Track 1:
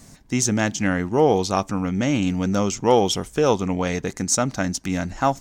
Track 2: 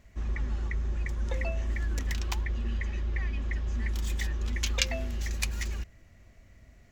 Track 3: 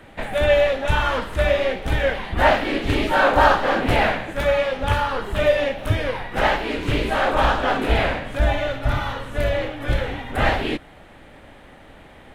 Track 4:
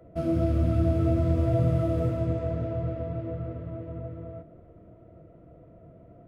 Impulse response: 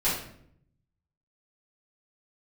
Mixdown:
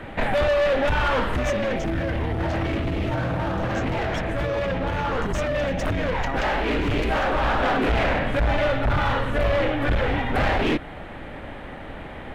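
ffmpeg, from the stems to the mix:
-filter_complex "[0:a]alimiter=limit=-14dB:level=0:latency=1,aeval=exprs='clip(val(0),-1,0.0891)':c=same,adelay=1050,volume=-0.5dB[a];[1:a]adelay=1600,volume=-0.5dB[b];[2:a]alimiter=limit=-14dB:level=0:latency=1:release=207,acontrast=70,volume=19dB,asoftclip=hard,volume=-19dB,volume=2dB[c];[3:a]adelay=1600,volume=1.5dB[d];[a][b][c]amix=inputs=3:normalize=0,bass=f=250:g=1,treble=f=4k:g=-12,alimiter=limit=-17.5dB:level=0:latency=1:release=36,volume=0dB[e];[d][e]amix=inputs=2:normalize=0,alimiter=limit=-17.5dB:level=0:latency=1:release=54"

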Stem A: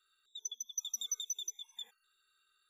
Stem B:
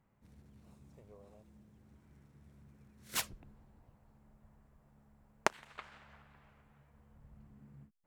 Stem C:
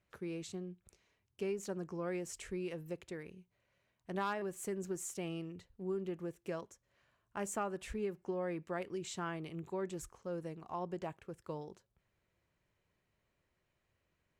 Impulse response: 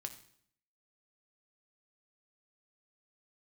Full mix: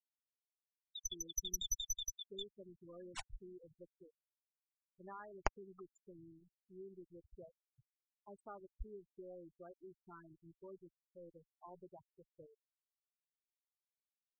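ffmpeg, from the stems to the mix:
-filter_complex "[0:a]equalizer=f=7.8k:t=o:w=0.21:g=-14,adelay=600,volume=-1.5dB[a];[1:a]lowpass=12k,equalizer=f=810:t=o:w=0.39:g=5,aeval=exprs='val(0)+0.00112*(sin(2*PI*60*n/s)+sin(2*PI*2*60*n/s)/2+sin(2*PI*3*60*n/s)/3+sin(2*PI*4*60*n/s)/4+sin(2*PI*5*60*n/s)/5)':c=same,volume=-9dB[b];[2:a]adelay=900,volume=-13.5dB,asplit=2[c][d];[d]volume=-16dB[e];[3:a]atrim=start_sample=2205[f];[e][f]afir=irnorm=-1:irlink=0[g];[a][b][c][g]amix=inputs=4:normalize=0,aeval=exprs='0.224*(cos(1*acos(clip(val(0)/0.224,-1,1)))-cos(1*PI/2))+0.0251*(cos(6*acos(clip(val(0)/0.224,-1,1)))-cos(6*PI/2))':c=same,afftfilt=real='re*gte(hypot(re,im),0.01)':imag='im*gte(hypot(re,im),0.01)':win_size=1024:overlap=0.75,asubboost=boost=9.5:cutoff=59"

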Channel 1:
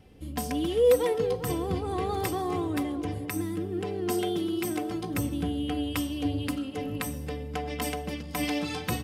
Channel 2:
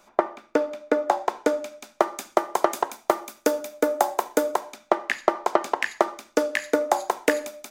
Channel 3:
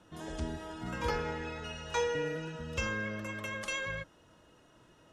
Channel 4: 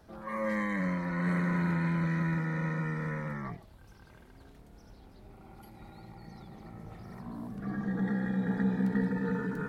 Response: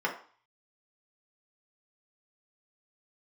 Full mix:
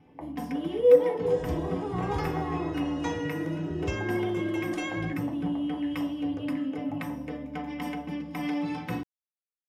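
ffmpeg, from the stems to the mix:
-filter_complex "[0:a]lowshelf=f=220:g=10.5,volume=2dB,asplit=2[a][b];[b]volume=-15dB[c];[1:a]equalizer=f=490:w=0.56:g=12,acrossover=split=170[d][e];[e]acompressor=threshold=-20dB:ratio=6[f];[d][f]amix=inputs=2:normalize=0,volume=-11dB,asplit=2[g][h];[h]volume=-20dB[i];[2:a]equalizer=f=110:t=o:w=2:g=13.5,adelay=1100,volume=-5.5dB,asplit=2[j][k];[k]volume=-9dB[l];[a][g]amix=inputs=2:normalize=0,asplit=3[m][n][o];[m]bandpass=f=300:t=q:w=8,volume=0dB[p];[n]bandpass=f=870:t=q:w=8,volume=-6dB[q];[o]bandpass=f=2.24k:t=q:w=8,volume=-9dB[r];[p][q][r]amix=inputs=3:normalize=0,alimiter=level_in=6.5dB:limit=-24dB:level=0:latency=1,volume=-6.5dB,volume=0dB[s];[4:a]atrim=start_sample=2205[t];[c][i][l]amix=inputs=3:normalize=0[u];[u][t]afir=irnorm=-1:irlink=0[v];[j][s][v]amix=inputs=3:normalize=0,equalizer=f=1.4k:w=6.1:g=-4.5"

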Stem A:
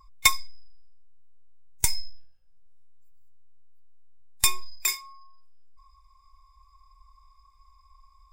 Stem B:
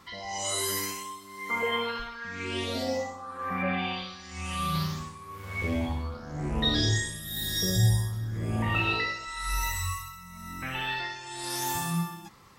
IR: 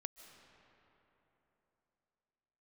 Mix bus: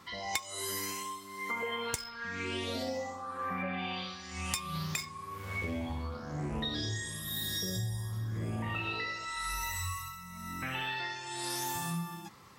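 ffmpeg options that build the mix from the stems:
-filter_complex "[0:a]adynamicsmooth=sensitivity=7:basefreq=2.5k,adelay=100,volume=3dB[a];[1:a]volume=-0.5dB[b];[a][b]amix=inputs=2:normalize=0,highpass=69,acompressor=threshold=-32dB:ratio=10"

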